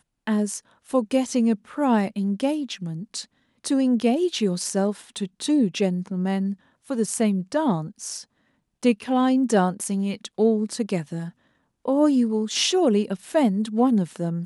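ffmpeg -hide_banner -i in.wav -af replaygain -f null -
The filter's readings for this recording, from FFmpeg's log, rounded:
track_gain = +3.0 dB
track_peak = 0.277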